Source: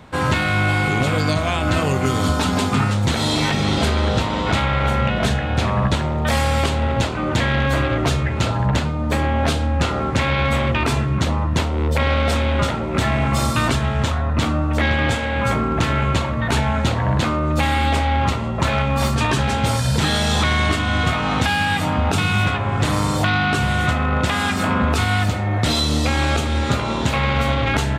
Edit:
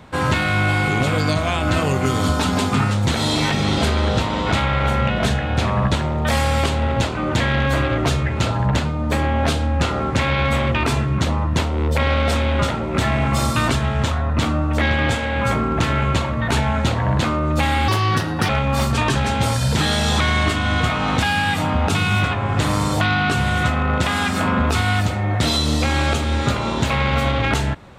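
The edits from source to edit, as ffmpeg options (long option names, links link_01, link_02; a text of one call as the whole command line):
ffmpeg -i in.wav -filter_complex "[0:a]asplit=3[link_01][link_02][link_03];[link_01]atrim=end=17.884[link_04];[link_02]atrim=start=17.88:end=18.72,asetpts=PTS-STARTPTS,asetrate=60858,aresample=44100,atrim=end_sample=26843,asetpts=PTS-STARTPTS[link_05];[link_03]atrim=start=18.716[link_06];[link_04][link_05]acrossfade=duration=0.004:curve1=hsin:curve2=hsin[link_07];[link_07][link_06]acrossfade=duration=0.004:curve1=hsin:curve2=hsin" out.wav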